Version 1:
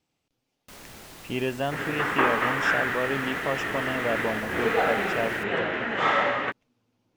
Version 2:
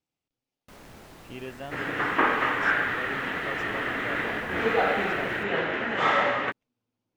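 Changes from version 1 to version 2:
speech −11.0 dB
first sound: add high-shelf EQ 2,400 Hz −10 dB

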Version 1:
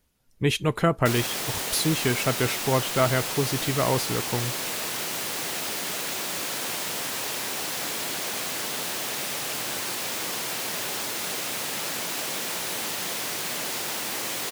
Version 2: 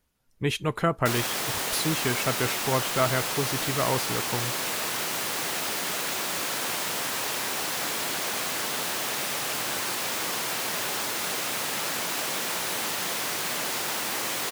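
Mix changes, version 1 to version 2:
speech −4.0 dB
master: add parametric band 1,200 Hz +3.5 dB 1.5 octaves

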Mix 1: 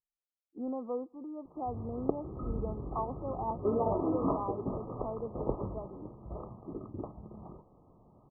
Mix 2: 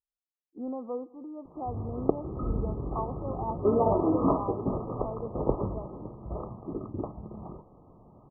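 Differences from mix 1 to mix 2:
speech: send +11.5 dB
background +6.0 dB

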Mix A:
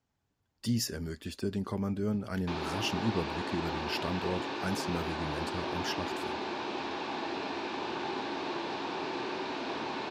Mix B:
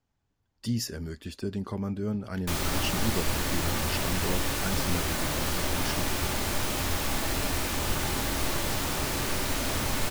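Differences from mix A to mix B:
background: remove loudspeaker in its box 320–3,600 Hz, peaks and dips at 360 Hz +5 dB, 570 Hz −8 dB, 900 Hz +3 dB, 1,300 Hz −8 dB, 2,000 Hz −10 dB, 3,100 Hz −7 dB
master: remove high-pass filter 88 Hz 6 dB per octave

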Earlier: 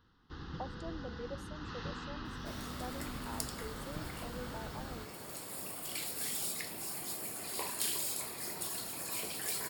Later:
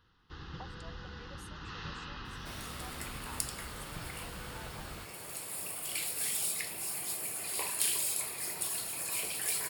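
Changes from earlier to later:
speech: add high-pass filter 1,000 Hz
master: add graphic EQ with 15 bands 250 Hz −7 dB, 2,500 Hz +6 dB, 10,000 Hz +7 dB

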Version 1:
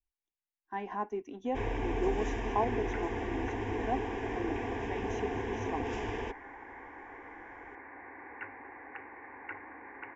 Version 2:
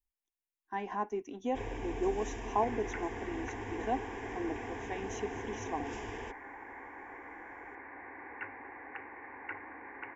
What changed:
first sound −6.5 dB
master: remove high-frequency loss of the air 110 metres

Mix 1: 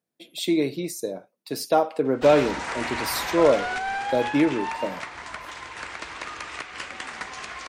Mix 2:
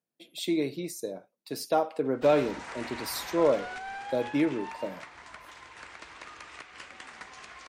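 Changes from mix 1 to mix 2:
speech −5.5 dB
background −10.5 dB

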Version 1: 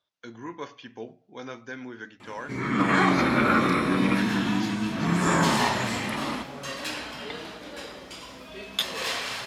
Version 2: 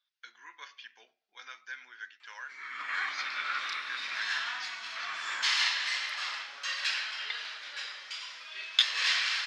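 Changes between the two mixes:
first sound −7.0 dB
second sound +4.0 dB
master: add Chebyshev band-pass filter 1,600–5,300 Hz, order 2

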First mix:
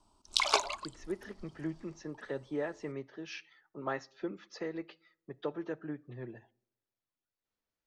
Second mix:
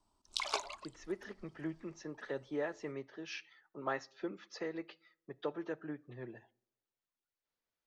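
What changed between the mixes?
speech: add low-shelf EQ 290 Hz −6 dB
background −8.5 dB

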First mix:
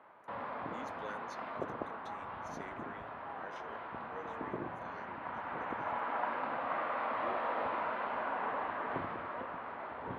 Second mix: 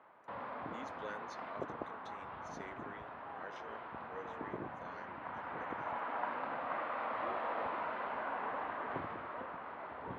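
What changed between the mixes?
speech: add low-pass filter 7,400 Hz
reverb: off

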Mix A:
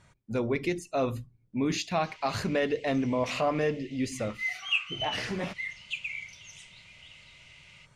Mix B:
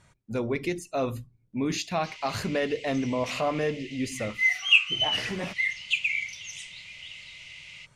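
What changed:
speech: add high-shelf EQ 10,000 Hz +8 dB
background +9.0 dB

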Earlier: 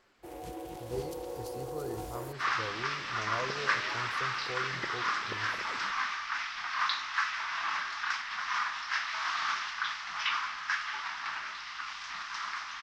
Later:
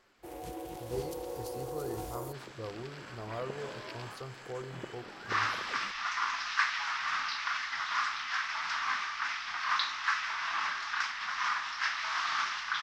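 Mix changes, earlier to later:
second sound: entry +2.90 s
master: add high-shelf EQ 9,400 Hz +3.5 dB

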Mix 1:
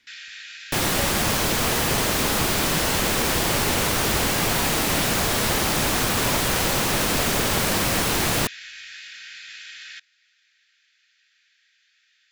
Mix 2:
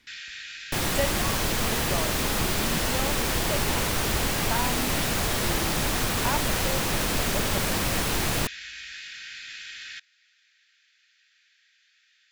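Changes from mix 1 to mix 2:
speech +5.5 dB
second sound −5.0 dB
master: add low-shelf EQ 68 Hz +9.5 dB

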